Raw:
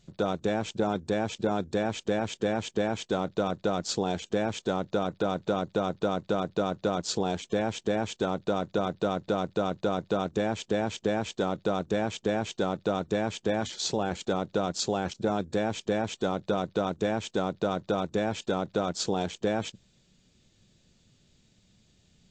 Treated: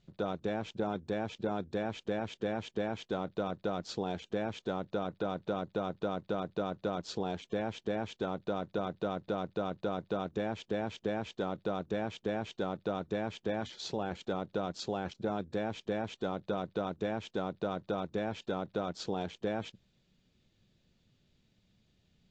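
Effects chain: LPF 4200 Hz 12 dB/oct; gain -6.5 dB

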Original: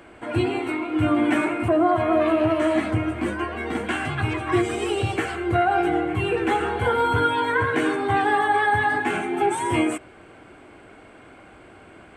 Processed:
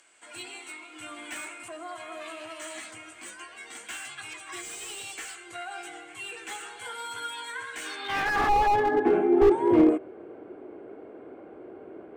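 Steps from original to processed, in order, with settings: band-pass sweep 7200 Hz -> 410 Hz, 7.79–8.87; slew limiter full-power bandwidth 30 Hz; gain +8.5 dB

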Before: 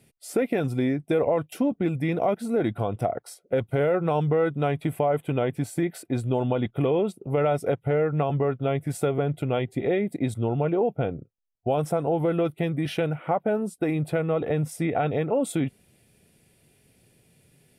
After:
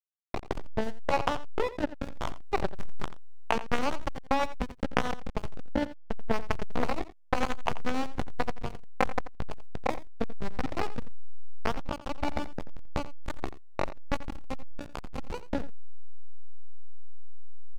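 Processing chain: LPF 1800 Hz 24 dB/oct; bell 930 Hz -8 dB 0.66 oct; pitch shift +9.5 st; power-law curve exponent 3; AGC gain up to 9 dB; backlash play -16.5 dBFS; echo 86 ms -15 dB; gain +2 dB

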